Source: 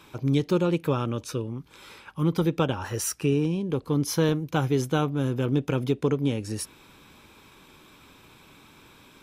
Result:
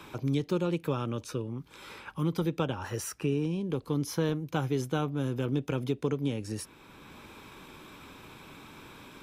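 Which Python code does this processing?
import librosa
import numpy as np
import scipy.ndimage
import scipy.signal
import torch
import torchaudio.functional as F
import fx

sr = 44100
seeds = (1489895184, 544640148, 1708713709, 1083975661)

y = fx.band_squash(x, sr, depth_pct=40)
y = F.gain(torch.from_numpy(y), -5.5).numpy()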